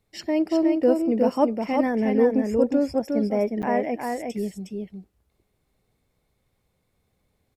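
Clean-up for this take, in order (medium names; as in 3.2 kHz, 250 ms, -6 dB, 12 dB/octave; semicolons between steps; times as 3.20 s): interpolate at 3.62 s, 8.9 ms; inverse comb 361 ms -4 dB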